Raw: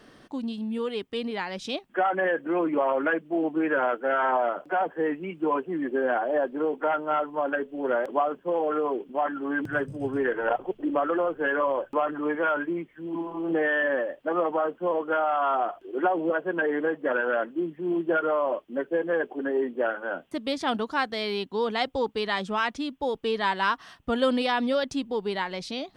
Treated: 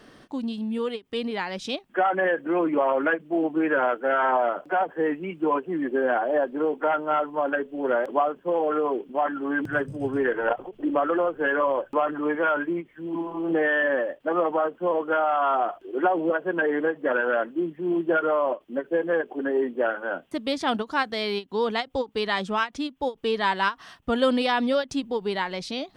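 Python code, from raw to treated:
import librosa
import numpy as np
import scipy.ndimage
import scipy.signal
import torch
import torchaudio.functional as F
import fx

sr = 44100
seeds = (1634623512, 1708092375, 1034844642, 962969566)

y = fx.end_taper(x, sr, db_per_s=390.0)
y = y * 10.0 ** (2.0 / 20.0)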